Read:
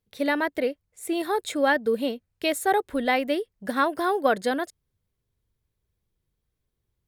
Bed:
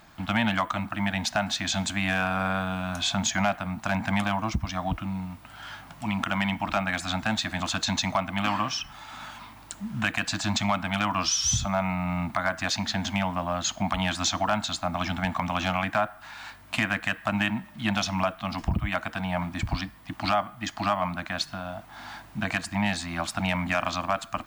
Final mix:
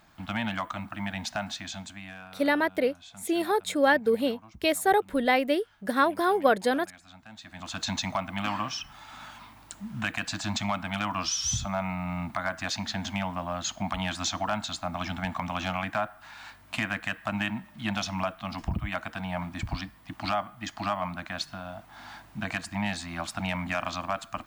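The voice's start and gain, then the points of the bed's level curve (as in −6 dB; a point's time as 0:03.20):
2.20 s, 0.0 dB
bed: 0:01.45 −6 dB
0:02.43 −22.5 dB
0:07.27 −22.5 dB
0:07.84 −4 dB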